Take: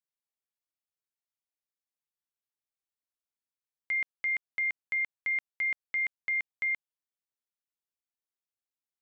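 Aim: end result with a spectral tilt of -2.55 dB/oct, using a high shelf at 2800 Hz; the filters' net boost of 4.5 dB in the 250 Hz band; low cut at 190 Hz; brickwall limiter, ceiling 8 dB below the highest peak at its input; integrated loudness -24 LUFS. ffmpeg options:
-af "highpass=190,equalizer=f=250:t=o:g=7.5,highshelf=f=2.8k:g=4.5,volume=12.5dB,alimiter=limit=-19dB:level=0:latency=1"

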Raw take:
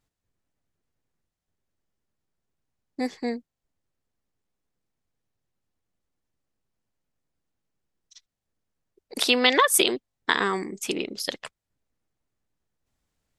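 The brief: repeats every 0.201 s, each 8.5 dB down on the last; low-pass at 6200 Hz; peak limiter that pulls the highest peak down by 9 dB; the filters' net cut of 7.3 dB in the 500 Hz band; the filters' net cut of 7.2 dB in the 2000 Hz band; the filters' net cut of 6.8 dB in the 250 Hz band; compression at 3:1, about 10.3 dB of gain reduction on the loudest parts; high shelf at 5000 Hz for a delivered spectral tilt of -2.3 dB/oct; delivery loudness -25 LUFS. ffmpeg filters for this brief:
-af "lowpass=6.2k,equalizer=f=250:t=o:g=-6,equalizer=f=500:t=o:g=-6.5,equalizer=f=2k:t=o:g=-8,highshelf=f=5k:g=-4,acompressor=threshold=-34dB:ratio=3,alimiter=level_in=1.5dB:limit=-24dB:level=0:latency=1,volume=-1.5dB,aecho=1:1:201|402|603|804:0.376|0.143|0.0543|0.0206,volume=14.5dB"

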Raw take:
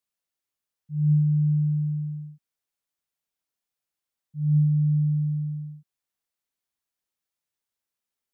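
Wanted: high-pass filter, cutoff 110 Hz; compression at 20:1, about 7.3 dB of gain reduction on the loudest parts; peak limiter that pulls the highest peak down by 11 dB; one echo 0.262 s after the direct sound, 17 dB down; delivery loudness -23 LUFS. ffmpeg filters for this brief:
-af "highpass=110,acompressor=threshold=-25dB:ratio=20,alimiter=level_in=10.5dB:limit=-24dB:level=0:latency=1,volume=-10.5dB,aecho=1:1:262:0.141,volume=17dB"

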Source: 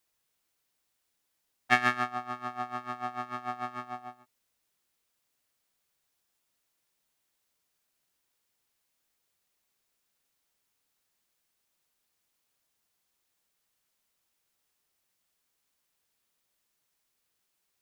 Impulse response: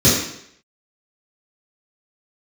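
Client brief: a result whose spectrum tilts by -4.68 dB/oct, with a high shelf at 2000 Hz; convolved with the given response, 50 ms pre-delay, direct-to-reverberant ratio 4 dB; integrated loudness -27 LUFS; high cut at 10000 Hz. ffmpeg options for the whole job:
-filter_complex "[0:a]lowpass=10k,highshelf=f=2k:g=-7,asplit=2[a][b];[1:a]atrim=start_sample=2205,adelay=50[c];[b][c]afir=irnorm=-1:irlink=0,volume=-26.5dB[d];[a][d]amix=inputs=2:normalize=0,volume=5.5dB"

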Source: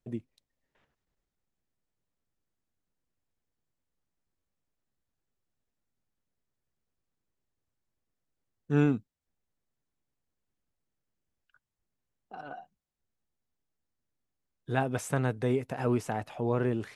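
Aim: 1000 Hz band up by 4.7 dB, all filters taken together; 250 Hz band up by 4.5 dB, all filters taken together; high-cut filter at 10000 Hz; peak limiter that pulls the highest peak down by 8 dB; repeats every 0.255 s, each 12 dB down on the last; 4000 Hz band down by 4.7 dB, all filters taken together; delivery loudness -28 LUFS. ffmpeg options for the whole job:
-af "lowpass=10k,equalizer=f=250:t=o:g=5,equalizer=f=1k:t=o:g=6.5,equalizer=f=4k:t=o:g=-7,alimiter=limit=-17.5dB:level=0:latency=1,aecho=1:1:255|510|765:0.251|0.0628|0.0157,volume=2.5dB"

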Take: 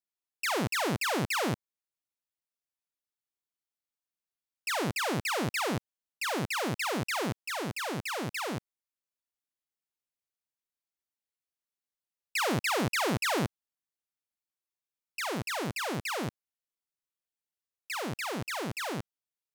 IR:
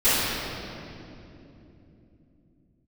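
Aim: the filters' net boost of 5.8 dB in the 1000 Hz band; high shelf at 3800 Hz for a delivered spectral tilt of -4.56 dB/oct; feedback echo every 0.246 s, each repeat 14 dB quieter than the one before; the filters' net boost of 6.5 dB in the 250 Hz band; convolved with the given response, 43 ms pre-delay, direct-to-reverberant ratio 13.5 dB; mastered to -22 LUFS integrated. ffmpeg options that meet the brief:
-filter_complex "[0:a]equalizer=f=250:t=o:g=8,equalizer=f=1k:t=o:g=6.5,highshelf=f=3.8k:g=3.5,aecho=1:1:246|492:0.2|0.0399,asplit=2[a][b];[1:a]atrim=start_sample=2205,adelay=43[c];[b][c]afir=irnorm=-1:irlink=0,volume=-33dB[d];[a][d]amix=inputs=2:normalize=0,volume=6dB"

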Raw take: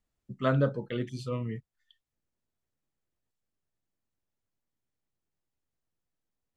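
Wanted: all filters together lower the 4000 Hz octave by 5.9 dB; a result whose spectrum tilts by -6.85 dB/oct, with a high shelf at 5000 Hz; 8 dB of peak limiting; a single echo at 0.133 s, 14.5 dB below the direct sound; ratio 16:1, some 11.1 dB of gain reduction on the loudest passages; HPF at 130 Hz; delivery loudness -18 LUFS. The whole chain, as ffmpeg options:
-af "highpass=130,equalizer=f=4k:t=o:g=-4.5,highshelf=f=5k:g=-8,acompressor=threshold=-32dB:ratio=16,alimiter=level_in=8dB:limit=-24dB:level=0:latency=1,volume=-8dB,aecho=1:1:133:0.188,volume=24.5dB"

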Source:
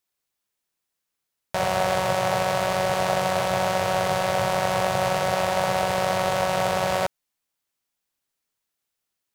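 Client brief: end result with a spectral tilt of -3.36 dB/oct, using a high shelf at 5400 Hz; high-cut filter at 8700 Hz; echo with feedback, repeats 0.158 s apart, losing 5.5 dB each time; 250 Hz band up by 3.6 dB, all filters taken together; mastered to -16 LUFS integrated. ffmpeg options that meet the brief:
-af "lowpass=8.7k,equalizer=f=250:t=o:g=6.5,highshelf=f=5.4k:g=-6,aecho=1:1:158|316|474|632|790|948|1106:0.531|0.281|0.149|0.079|0.0419|0.0222|0.0118,volume=5dB"

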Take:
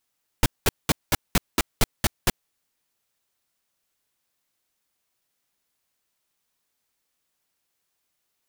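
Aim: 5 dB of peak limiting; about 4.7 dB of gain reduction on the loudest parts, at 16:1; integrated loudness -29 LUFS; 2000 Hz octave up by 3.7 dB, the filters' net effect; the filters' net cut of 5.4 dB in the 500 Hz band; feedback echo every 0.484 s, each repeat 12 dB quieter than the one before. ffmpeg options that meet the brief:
-af "equalizer=f=500:t=o:g=-7.5,equalizer=f=2k:t=o:g=5,acompressor=threshold=-19dB:ratio=16,alimiter=limit=-12dB:level=0:latency=1,aecho=1:1:484|968|1452:0.251|0.0628|0.0157,volume=2dB"

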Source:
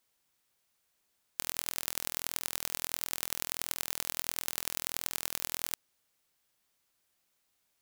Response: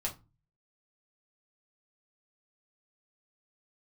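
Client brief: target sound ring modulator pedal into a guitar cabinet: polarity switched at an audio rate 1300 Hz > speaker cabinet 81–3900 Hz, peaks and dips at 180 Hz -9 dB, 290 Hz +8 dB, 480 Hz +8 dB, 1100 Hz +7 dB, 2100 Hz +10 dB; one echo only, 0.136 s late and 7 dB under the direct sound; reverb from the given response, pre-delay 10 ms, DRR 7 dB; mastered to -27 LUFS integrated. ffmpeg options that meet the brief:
-filter_complex "[0:a]aecho=1:1:136:0.447,asplit=2[a][b];[1:a]atrim=start_sample=2205,adelay=10[c];[b][c]afir=irnorm=-1:irlink=0,volume=-9.5dB[d];[a][d]amix=inputs=2:normalize=0,aeval=exprs='val(0)*sgn(sin(2*PI*1300*n/s))':c=same,highpass=81,equalizer=f=180:t=q:w=4:g=-9,equalizer=f=290:t=q:w=4:g=8,equalizer=f=480:t=q:w=4:g=8,equalizer=f=1.1k:t=q:w=4:g=7,equalizer=f=2.1k:t=q:w=4:g=10,lowpass=f=3.9k:w=0.5412,lowpass=f=3.9k:w=1.3066,volume=10dB"

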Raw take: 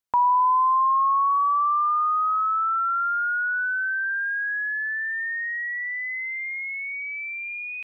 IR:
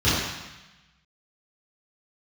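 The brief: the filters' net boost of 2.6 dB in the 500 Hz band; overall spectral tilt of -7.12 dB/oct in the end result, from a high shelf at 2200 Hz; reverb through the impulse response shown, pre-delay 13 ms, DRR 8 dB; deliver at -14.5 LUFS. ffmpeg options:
-filter_complex "[0:a]equalizer=f=500:t=o:g=3,highshelf=f=2.2k:g=4,asplit=2[a][b];[1:a]atrim=start_sample=2205,adelay=13[c];[b][c]afir=irnorm=-1:irlink=0,volume=-26.5dB[d];[a][d]amix=inputs=2:normalize=0,volume=6.5dB"

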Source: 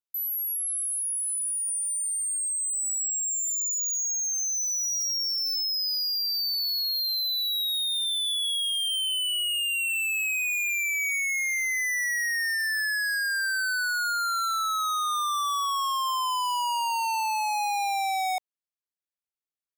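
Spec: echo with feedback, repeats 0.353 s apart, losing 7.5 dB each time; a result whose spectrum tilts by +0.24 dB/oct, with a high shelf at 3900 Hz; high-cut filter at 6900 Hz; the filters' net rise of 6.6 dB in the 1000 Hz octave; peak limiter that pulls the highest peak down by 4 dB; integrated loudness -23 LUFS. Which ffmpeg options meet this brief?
-af "lowpass=6.9k,equalizer=f=1k:t=o:g=8.5,highshelf=f=3.9k:g=-6,alimiter=limit=-21.5dB:level=0:latency=1,aecho=1:1:353|706|1059|1412|1765:0.422|0.177|0.0744|0.0312|0.0131,volume=2.5dB"

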